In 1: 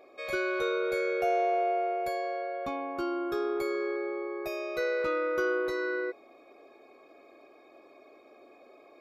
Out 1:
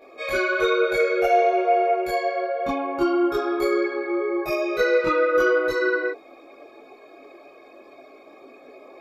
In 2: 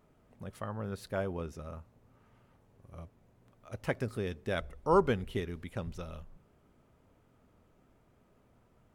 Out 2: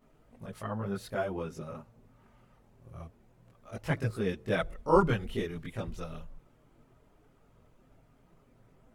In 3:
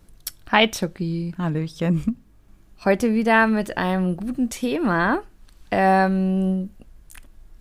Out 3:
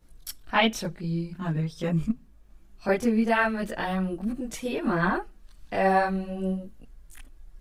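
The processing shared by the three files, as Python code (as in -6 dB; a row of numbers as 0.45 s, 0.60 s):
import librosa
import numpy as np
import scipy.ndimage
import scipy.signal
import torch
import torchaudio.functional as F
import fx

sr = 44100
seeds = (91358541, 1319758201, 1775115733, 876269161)

y = fx.chorus_voices(x, sr, voices=6, hz=0.46, base_ms=22, depth_ms=4.5, mix_pct=65)
y = librosa.util.normalize(y) * 10.0 ** (-9 / 20.0)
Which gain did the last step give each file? +11.5 dB, +5.0 dB, -2.5 dB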